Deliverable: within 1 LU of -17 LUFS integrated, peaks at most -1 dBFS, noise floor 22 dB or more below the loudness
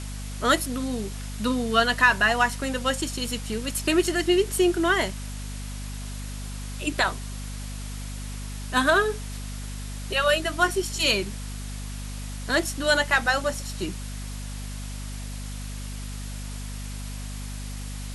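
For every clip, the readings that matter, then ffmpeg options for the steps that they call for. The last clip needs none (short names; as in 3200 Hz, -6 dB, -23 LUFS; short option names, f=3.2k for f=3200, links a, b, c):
hum 50 Hz; harmonics up to 250 Hz; hum level -32 dBFS; noise floor -34 dBFS; noise floor target -49 dBFS; loudness -26.5 LUFS; peak -6.0 dBFS; loudness target -17.0 LUFS
-> -af "bandreject=f=50:t=h:w=4,bandreject=f=100:t=h:w=4,bandreject=f=150:t=h:w=4,bandreject=f=200:t=h:w=4,bandreject=f=250:t=h:w=4"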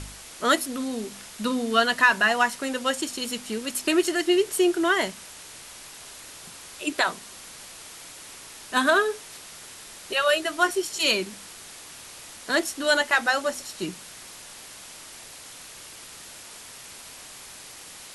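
hum none; noise floor -44 dBFS; noise floor target -46 dBFS
-> -af "afftdn=nr=6:nf=-44"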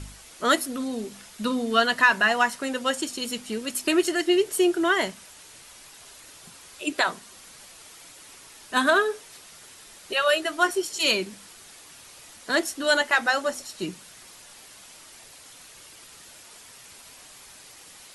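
noise floor -48 dBFS; loudness -24.0 LUFS; peak -6.0 dBFS; loudness target -17.0 LUFS
-> -af "volume=7dB,alimiter=limit=-1dB:level=0:latency=1"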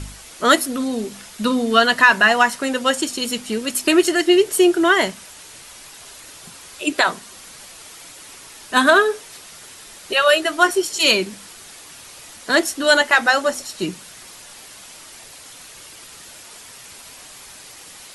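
loudness -17.0 LUFS; peak -1.0 dBFS; noise floor -41 dBFS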